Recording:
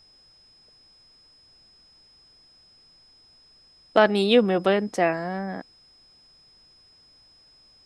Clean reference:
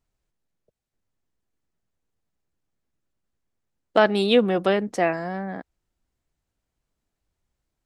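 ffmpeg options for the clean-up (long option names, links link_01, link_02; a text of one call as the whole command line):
ffmpeg -i in.wav -af "bandreject=frequency=5100:width=30,agate=range=-21dB:threshold=-49dB" out.wav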